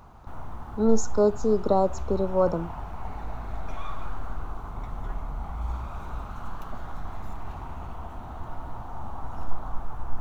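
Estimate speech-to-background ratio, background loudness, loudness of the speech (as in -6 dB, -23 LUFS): 14.0 dB, -39.0 LUFS, -25.0 LUFS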